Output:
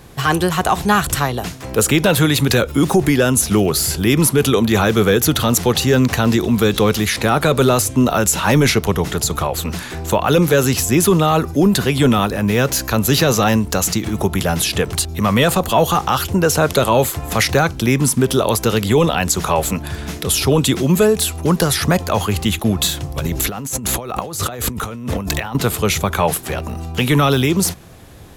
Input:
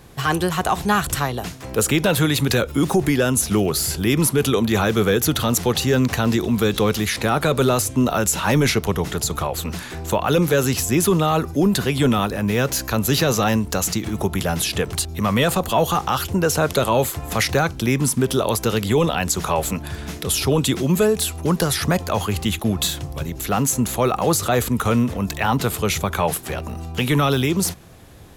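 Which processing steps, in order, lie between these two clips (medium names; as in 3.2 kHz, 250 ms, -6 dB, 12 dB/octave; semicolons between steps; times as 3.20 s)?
23.18–25.55 s: compressor with a negative ratio -28 dBFS, ratio -1; trim +4 dB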